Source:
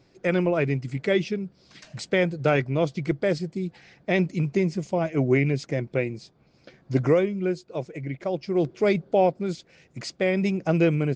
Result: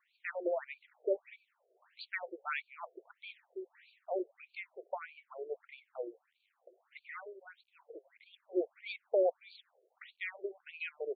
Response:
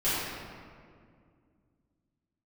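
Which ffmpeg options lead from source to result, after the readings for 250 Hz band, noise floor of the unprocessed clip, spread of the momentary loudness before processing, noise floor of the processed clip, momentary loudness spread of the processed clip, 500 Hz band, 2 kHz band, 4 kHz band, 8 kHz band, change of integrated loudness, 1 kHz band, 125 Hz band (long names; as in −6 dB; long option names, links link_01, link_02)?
−22.0 dB, −61 dBFS, 12 LU, −80 dBFS, 19 LU, −13.5 dB, −12.5 dB, −15.0 dB, can't be measured, −14.5 dB, −13.5 dB, below −40 dB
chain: -af "acrusher=bits=9:mix=0:aa=0.000001,afftfilt=real='re*between(b*sr/1024,480*pow(3300/480,0.5+0.5*sin(2*PI*1.6*pts/sr))/1.41,480*pow(3300/480,0.5+0.5*sin(2*PI*1.6*pts/sr))*1.41)':imag='im*between(b*sr/1024,480*pow(3300/480,0.5+0.5*sin(2*PI*1.6*pts/sr))/1.41,480*pow(3300/480,0.5+0.5*sin(2*PI*1.6*pts/sr))*1.41)':win_size=1024:overlap=0.75,volume=-7dB"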